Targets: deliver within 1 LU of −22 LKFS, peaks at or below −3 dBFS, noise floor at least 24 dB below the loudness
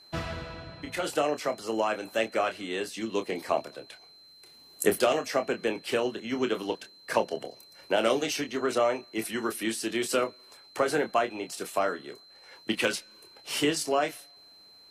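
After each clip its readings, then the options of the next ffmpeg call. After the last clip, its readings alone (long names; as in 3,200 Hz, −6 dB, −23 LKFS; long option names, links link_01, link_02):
interfering tone 4,100 Hz; level of the tone −52 dBFS; integrated loudness −29.5 LKFS; sample peak −9.5 dBFS; target loudness −22.0 LKFS
→ -af "bandreject=frequency=4100:width=30"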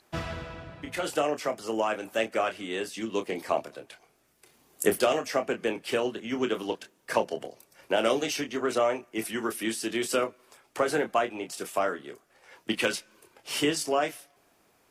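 interfering tone none found; integrated loudness −29.5 LKFS; sample peak −9.5 dBFS; target loudness −22.0 LKFS
→ -af "volume=7.5dB,alimiter=limit=-3dB:level=0:latency=1"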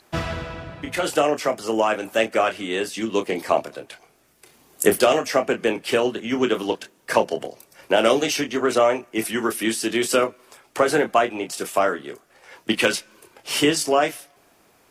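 integrated loudness −22.0 LKFS; sample peak −3.0 dBFS; background noise floor −59 dBFS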